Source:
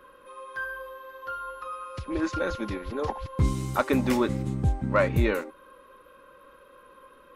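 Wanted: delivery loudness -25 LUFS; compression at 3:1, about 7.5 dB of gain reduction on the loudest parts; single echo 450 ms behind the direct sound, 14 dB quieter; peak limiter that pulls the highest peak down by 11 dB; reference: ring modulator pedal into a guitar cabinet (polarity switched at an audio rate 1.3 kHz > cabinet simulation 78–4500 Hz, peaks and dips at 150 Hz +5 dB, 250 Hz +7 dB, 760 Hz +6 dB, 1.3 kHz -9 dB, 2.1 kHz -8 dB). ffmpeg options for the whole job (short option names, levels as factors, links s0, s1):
-af "acompressor=threshold=0.0398:ratio=3,alimiter=level_in=1.41:limit=0.0631:level=0:latency=1,volume=0.708,aecho=1:1:450:0.2,aeval=exprs='val(0)*sgn(sin(2*PI*1300*n/s))':c=same,highpass=78,equalizer=f=150:t=q:w=4:g=5,equalizer=f=250:t=q:w=4:g=7,equalizer=f=760:t=q:w=4:g=6,equalizer=f=1300:t=q:w=4:g=-9,equalizer=f=2100:t=q:w=4:g=-8,lowpass=f=4500:w=0.5412,lowpass=f=4500:w=1.3066,volume=3.98"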